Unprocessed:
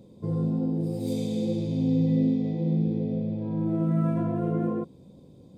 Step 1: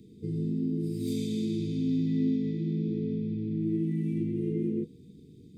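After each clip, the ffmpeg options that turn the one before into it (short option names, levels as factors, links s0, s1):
-filter_complex "[0:a]afftfilt=real='re*(1-between(b*sr/4096,480,1800))':imag='im*(1-between(b*sr/4096,480,1800))':win_size=4096:overlap=0.75,bandreject=f=60:t=h:w=6,bandreject=f=120:t=h:w=6,bandreject=f=180:t=h:w=6,acrossover=split=250|650|1200[s0][s1][s2][s3];[s0]alimiter=level_in=1.88:limit=0.0631:level=0:latency=1:release=71,volume=0.531[s4];[s4][s1][s2][s3]amix=inputs=4:normalize=0"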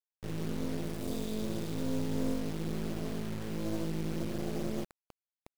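-af "acrusher=bits=4:dc=4:mix=0:aa=0.000001,volume=0.841"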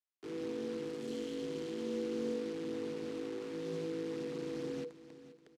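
-af "afreqshift=-490,highpass=240,lowpass=6300,aecho=1:1:479|958|1437:0.178|0.064|0.023,volume=0.708"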